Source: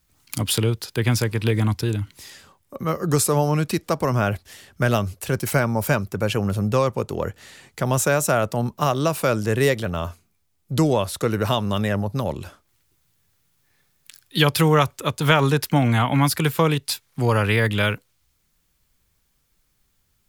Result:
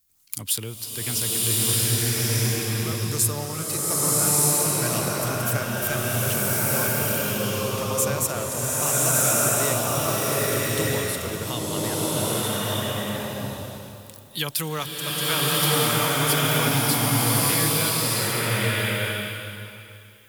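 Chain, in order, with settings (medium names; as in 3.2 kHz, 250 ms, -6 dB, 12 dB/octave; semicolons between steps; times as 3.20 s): pre-emphasis filter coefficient 0.8; swelling reverb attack 1270 ms, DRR -9 dB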